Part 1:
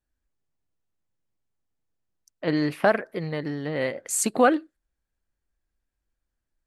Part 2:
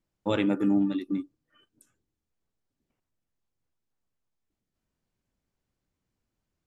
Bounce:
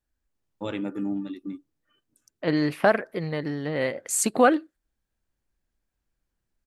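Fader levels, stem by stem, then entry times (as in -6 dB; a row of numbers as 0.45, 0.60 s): +0.5, -5.5 dB; 0.00, 0.35 s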